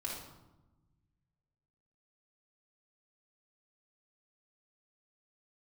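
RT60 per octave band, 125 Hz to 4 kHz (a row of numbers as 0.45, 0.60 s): 2.3, 1.7, 1.1, 1.0, 0.75, 0.65 s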